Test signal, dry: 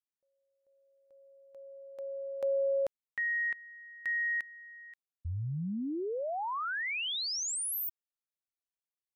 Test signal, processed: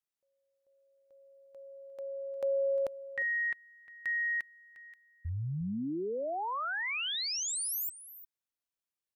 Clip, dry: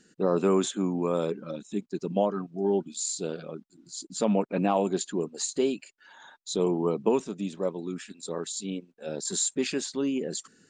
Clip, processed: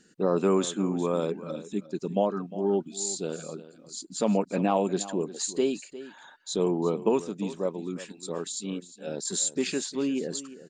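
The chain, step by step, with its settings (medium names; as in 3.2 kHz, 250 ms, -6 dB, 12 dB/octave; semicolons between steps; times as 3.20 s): delay 354 ms -15.5 dB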